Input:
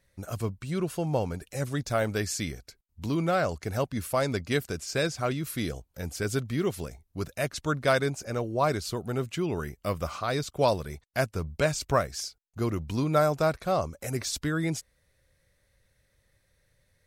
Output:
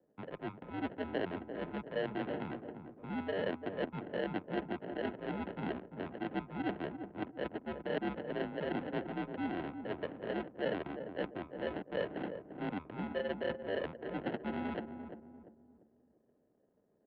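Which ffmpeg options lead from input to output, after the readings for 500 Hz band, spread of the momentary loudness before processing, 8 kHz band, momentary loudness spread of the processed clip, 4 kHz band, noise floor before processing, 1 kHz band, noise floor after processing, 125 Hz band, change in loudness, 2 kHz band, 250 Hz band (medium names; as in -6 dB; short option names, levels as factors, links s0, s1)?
-9.5 dB, 9 LU, under -40 dB, 6 LU, -13.0 dB, -72 dBFS, -11.0 dB, -74 dBFS, -16.5 dB, -10.0 dB, -9.5 dB, -6.5 dB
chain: -filter_complex "[0:a]areverse,acompressor=threshold=0.02:ratio=12,areverse,acrusher=samples=36:mix=1:aa=0.000001,adynamicsmooth=sensitivity=6:basefreq=710,asplit=2[s0][s1];[s1]adelay=345,lowpass=f=830:p=1,volume=0.447,asplit=2[s2][s3];[s3]adelay=345,lowpass=f=830:p=1,volume=0.41,asplit=2[s4][s5];[s5]adelay=345,lowpass=f=830:p=1,volume=0.41,asplit=2[s6][s7];[s7]adelay=345,lowpass=f=830:p=1,volume=0.41,asplit=2[s8][s9];[s9]adelay=345,lowpass=f=830:p=1,volume=0.41[s10];[s0][s2][s4][s6][s8][s10]amix=inputs=6:normalize=0,highpass=f=270:t=q:w=0.5412,highpass=f=270:t=q:w=1.307,lowpass=f=3500:t=q:w=0.5176,lowpass=f=3500:t=q:w=0.7071,lowpass=f=3500:t=q:w=1.932,afreqshift=-81,volume=1.5"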